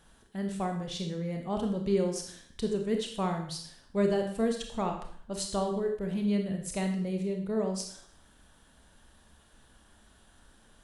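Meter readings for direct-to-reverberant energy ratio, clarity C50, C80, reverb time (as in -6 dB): 3.0 dB, 6.0 dB, 9.5 dB, 0.55 s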